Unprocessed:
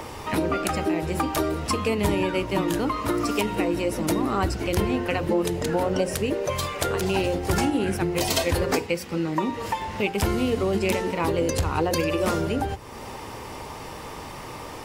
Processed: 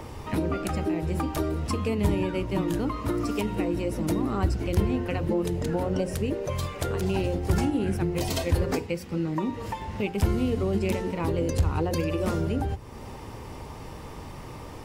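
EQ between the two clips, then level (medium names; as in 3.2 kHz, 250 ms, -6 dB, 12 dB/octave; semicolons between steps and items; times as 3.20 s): bass shelf 170 Hz +4.5 dB; bass shelf 380 Hz +7.5 dB; -8.0 dB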